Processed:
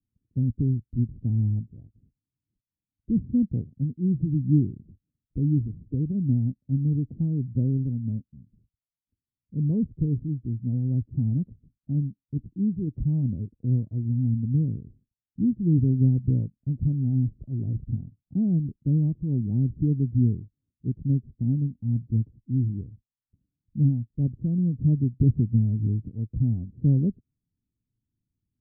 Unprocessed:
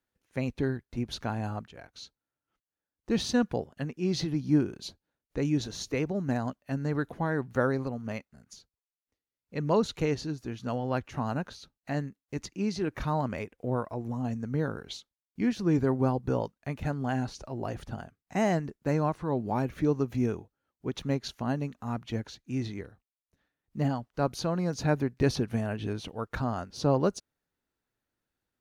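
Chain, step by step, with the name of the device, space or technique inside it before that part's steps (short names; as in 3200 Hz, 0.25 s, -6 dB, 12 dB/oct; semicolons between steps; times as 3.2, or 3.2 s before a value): the neighbour's flat through the wall (LPF 260 Hz 24 dB/oct; bell 110 Hz +7 dB 0.86 oct); gain +5.5 dB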